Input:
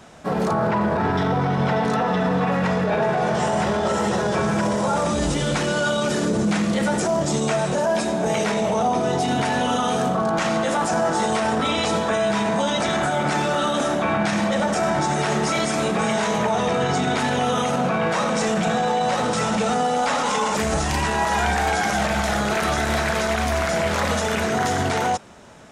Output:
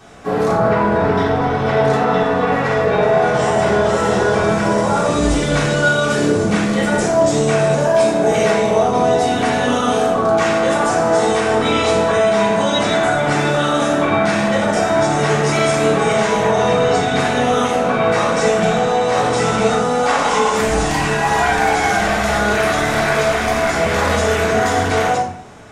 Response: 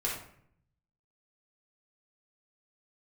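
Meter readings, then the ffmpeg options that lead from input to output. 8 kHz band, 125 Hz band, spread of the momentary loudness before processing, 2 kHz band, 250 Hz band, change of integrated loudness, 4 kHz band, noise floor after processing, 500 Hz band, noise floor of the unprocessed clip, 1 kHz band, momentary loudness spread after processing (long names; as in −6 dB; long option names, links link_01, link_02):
+3.5 dB, +4.0 dB, 1 LU, +6.5 dB, +3.5 dB, +5.5 dB, +4.0 dB, −18 dBFS, +7.5 dB, −23 dBFS, +5.0 dB, 2 LU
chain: -filter_complex "[1:a]atrim=start_sample=2205[link_01];[0:a][link_01]afir=irnorm=-1:irlink=0"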